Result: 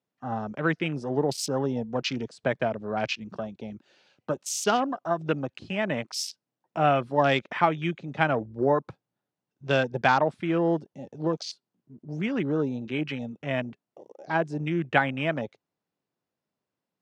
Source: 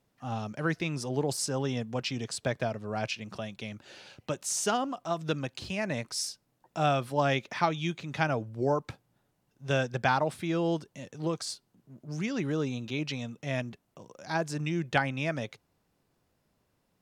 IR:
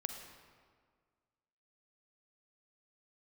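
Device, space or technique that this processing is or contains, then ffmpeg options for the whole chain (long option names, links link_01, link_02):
over-cleaned archive recording: -af "highpass=160,lowpass=6400,afwtdn=0.01,volume=5dB"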